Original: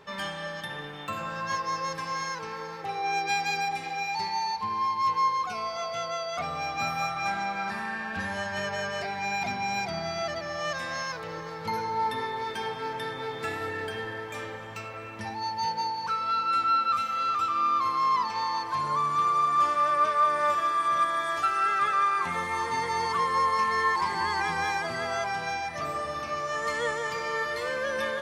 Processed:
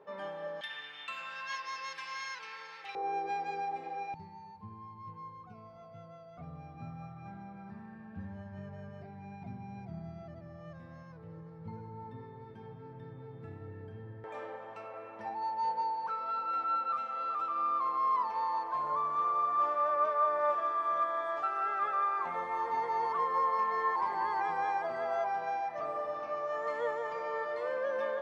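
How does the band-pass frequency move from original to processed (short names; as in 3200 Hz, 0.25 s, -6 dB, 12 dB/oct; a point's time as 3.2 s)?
band-pass, Q 1.5
530 Hz
from 0.61 s 2700 Hz
from 2.95 s 480 Hz
from 4.14 s 120 Hz
from 14.24 s 670 Hz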